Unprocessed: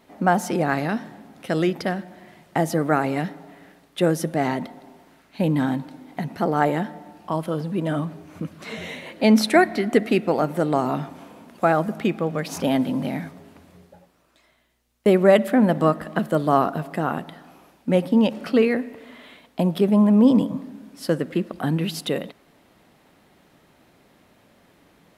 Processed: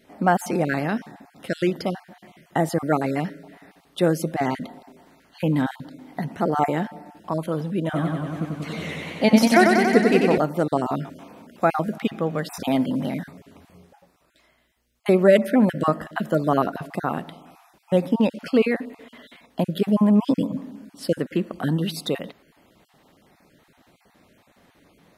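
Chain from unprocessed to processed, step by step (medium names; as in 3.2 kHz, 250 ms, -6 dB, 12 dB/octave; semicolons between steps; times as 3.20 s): random holes in the spectrogram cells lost 21%; 7.84–10.38 s: modulated delay 94 ms, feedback 78%, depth 95 cents, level -4 dB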